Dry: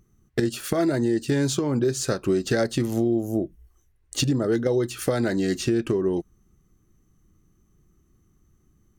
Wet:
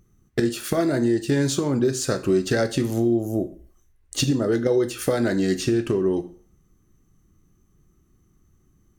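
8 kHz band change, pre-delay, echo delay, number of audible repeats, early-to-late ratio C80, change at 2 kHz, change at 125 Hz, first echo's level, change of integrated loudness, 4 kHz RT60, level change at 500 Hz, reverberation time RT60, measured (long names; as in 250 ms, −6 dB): +1.5 dB, 7 ms, no echo audible, no echo audible, 19.0 dB, +1.5 dB, +1.0 dB, no echo audible, +1.5 dB, 0.40 s, +2.0 dB, 0.45 s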